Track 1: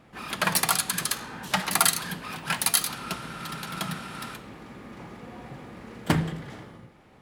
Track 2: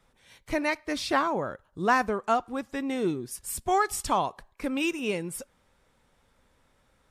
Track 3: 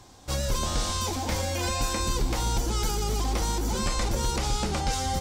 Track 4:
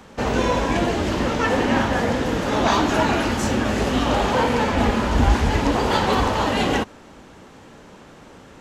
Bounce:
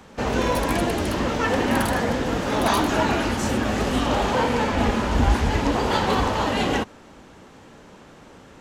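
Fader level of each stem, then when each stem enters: -13.0 dB, -12.5 dB, -16.0 dB, -2.0 dB; 0.00 s, 0.00 s, 0.00 s, 0.00 s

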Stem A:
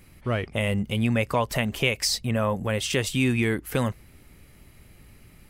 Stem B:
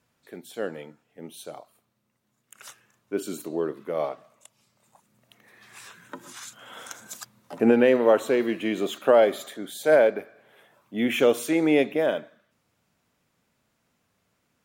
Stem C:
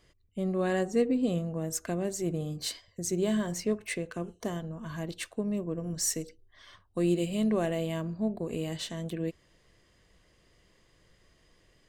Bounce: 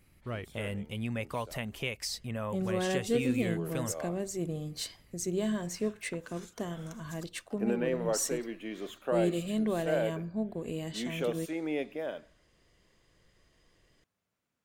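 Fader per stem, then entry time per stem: -11.5 dB, -13.0 dB, -3.0 dB; 0.00 s, 0.00 s, 2.15 s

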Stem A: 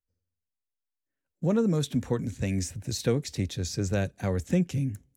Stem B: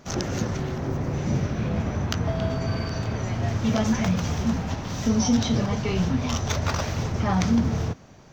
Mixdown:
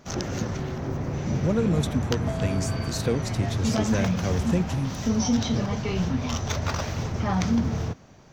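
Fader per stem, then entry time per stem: +0.5 dB, -2.0 dB; 0.00 s, 0.00 s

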